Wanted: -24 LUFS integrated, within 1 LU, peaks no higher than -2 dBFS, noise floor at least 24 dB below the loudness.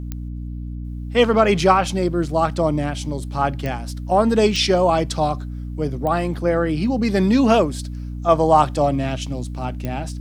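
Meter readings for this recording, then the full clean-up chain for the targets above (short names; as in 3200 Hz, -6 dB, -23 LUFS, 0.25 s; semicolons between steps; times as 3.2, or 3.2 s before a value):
clicks 5; hum 60 Hz; harmonics up to 300 Hz; hum level -27 dBFS; loudness -19.5 LUFS; peak -2.0 dBFS; loudness target -24.0 LUFS
-> de-click; notches 60/120/180/240/300 Hz; gain -4.5 dB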